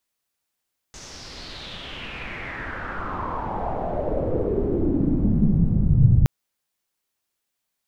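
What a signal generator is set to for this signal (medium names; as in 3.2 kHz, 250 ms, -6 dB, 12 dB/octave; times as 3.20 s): swept filtered noise pink, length 5.32 s lowpass, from 6.5 kHz, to 110 Hz, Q 4.3, exponential, gain ramp +28 dB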